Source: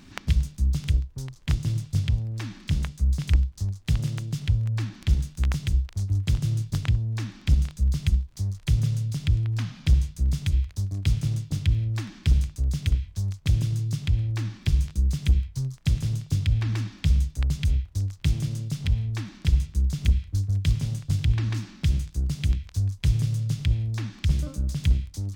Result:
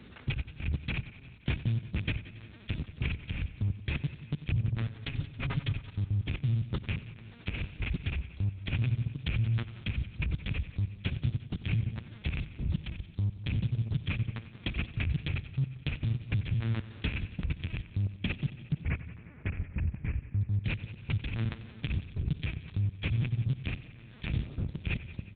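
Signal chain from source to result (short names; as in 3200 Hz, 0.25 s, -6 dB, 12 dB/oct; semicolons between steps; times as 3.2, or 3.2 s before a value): rattling part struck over -16 dBFS, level -16 dBFS; LPC vocoder at 8 kHz pitch kept; in parallel at +1 dB: compressor 16:1, threshold -30 dBFS, peak gain reduction 20.5 dB; 4.81–5.8 on the sum: comb 7.3 ms, depth 83%; 18.72–20.41 steep low-pass 2400 Hz 48 dB/oct; level quantiser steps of 23 dB; HPF 63 Hz; on a send: feedback echo 0.175 s, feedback 57%, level -19.5 dB; on the sum: warbling echo 92 ms, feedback 70%, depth 61 cents, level -16 dB; gain -2.5 dB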